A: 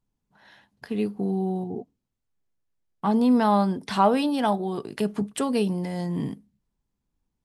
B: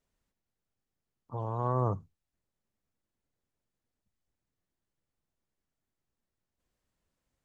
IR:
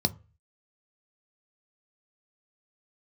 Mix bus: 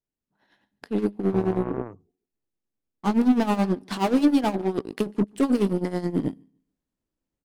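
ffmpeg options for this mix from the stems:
-filter_complex "[0:a]asoftclip=type=hard:threshold=-22.5dB,tremolo=f=9.4:d=0.6,volume=-6dB,asplit=2[link_01][link_02];[link_02]volume=-20.5dB[link_03];[1:a]acompressor=threshold=-34dB:ratio=12,volume=-5dB[link_04];[link_03]aecho=0:1:145|290|435|580:1|0.23|0.0529|0.0122[link_05];[link_01][link_04][link_05]amix=inputs=3:normalize=0,dynaudnorm=framelen=140:gausssize=5:maxgain=7dB,aeval=exprs='0.141*(cos(1*acos(clip(val(0)/0.141,-1,1)))-cos(1*PI/2))+0.0316*(cos(2*acos(clip(val(0)/0.141,-1,1)))-cos(2*PI/2))+0.0141*(cos(7*acos(clip(val(0)/0.141,-1,1)))-cos(7*PI/2))':channel_layout=same,equalizer=frequency=310:width_type=o:width=1.2:gain=9.5"

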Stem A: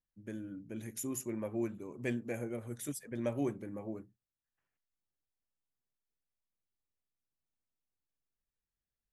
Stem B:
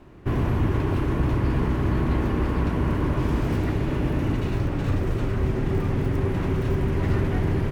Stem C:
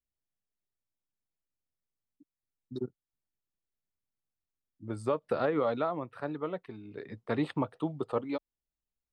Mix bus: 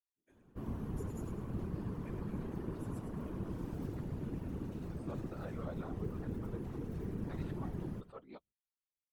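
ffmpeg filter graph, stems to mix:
ffmpeg -i stem1.wav -i stem2.wav -i stem3.wav -filter_complex "[0:a]highpass=400,volume=-11dB,asplit=2[link_01][link_02];[link_02]volume=-7dB[link_03];[1:a]lowshelf=frequency=65:gain=-7.5,crystalizer=i=8:c=0,firequalizer=gain_entry='entry(170,0);entry(510,-10);entry(2100,-28)':delay=0.05:min_phase=1,adelay=300,volume=2dB,asplit=2[link_04][link_05];[link_05]volume=-16.5dB[link_06];[2:a]volume=-7dB[link_07];[link_03][link_06]amix=inputs=2:normalize=0,aecho=0:1:102|204|306|408|510:1|0.34|0.116|0.0393|0.0134[link_08];[link_01][link_04][link_07][link_08]amix=inputs=4:normalize=0,lowshelf=frequency=470:gain=-8,flanger=delay=6.7:depth=1.2:regen=27:speed=0.38:shape=triangular,afftfilt=real='hypot(re,im)*cos(2*PI*random(0))':imag='hypot(re,im)*sin(2*PI*random(1))':win_size=512:overlap=0.75" out.wav

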